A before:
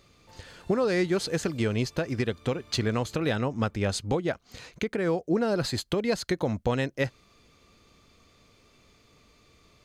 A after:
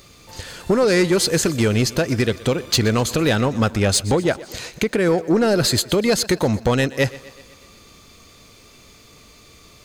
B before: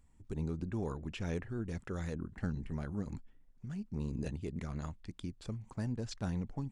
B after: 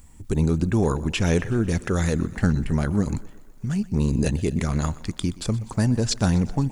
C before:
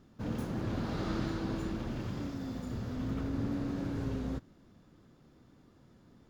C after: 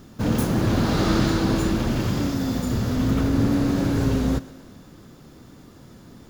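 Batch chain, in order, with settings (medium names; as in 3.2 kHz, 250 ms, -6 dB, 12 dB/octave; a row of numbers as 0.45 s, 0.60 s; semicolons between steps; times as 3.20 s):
treble shelf 6.2 kHz +11.5 dB; saturation -20 dBFS; thinning echo 124 ms, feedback 60%, high-pass 170 Hz, level -18.5 dB; peak normalisation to -9 dBFS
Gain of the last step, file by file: +10.5 dB, +16.5 dB, +14.5 dB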